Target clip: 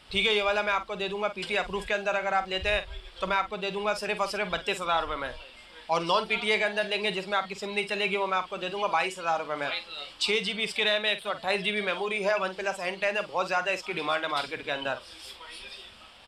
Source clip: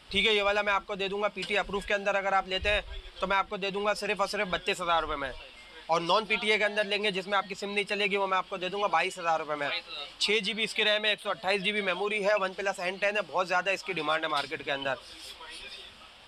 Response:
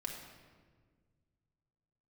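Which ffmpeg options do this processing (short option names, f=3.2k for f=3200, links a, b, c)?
-filter_complex "[0:a]asplit=2[a][b];[b]adelay=48,volume=-12dB[c];[a][c]amix=inputs=2:normalize=0"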